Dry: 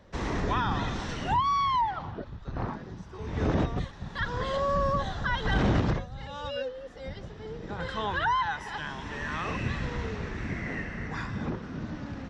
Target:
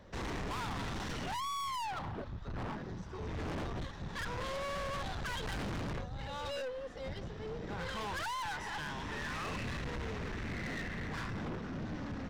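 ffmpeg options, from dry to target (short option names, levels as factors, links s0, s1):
-filter_complex "[0:a]asplit=2[s0][s1];[s1]aeval=exprs='sgn(val(0))*max(abs(val(0))-0.00501,0)':c=same,volume=0.501[s2];[s0][s2]amix=inputs=2:normalize=0,aeval=exprs='(tanh(70.8*val(0)+0.25)-tanh(0.25))/70.8':c=same"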